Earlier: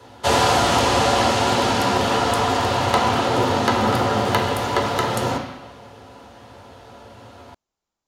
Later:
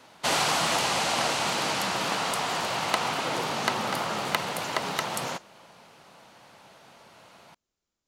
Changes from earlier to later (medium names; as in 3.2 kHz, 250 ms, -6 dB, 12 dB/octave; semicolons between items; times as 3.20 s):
speech: add peaking EQ 860 Hz -8.5 dB 0.84 oct; reverb: off